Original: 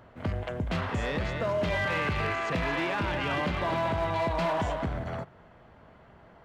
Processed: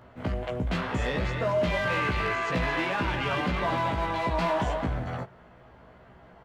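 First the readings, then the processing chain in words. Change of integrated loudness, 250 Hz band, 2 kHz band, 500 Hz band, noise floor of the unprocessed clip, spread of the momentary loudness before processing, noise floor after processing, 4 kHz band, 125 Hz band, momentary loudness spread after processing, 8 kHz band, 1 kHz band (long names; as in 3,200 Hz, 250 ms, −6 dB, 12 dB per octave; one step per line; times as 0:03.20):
+1.5 dB, +1.5 dB, +2.0 dB, +1.0 dB, −55 dBFS, 6 LU, −53 dBFS, +1.5 dB, +1.0 dB, 7 LU, +2.0 dB, +2.0 dB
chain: double-tracking delay 16 ms −3 dB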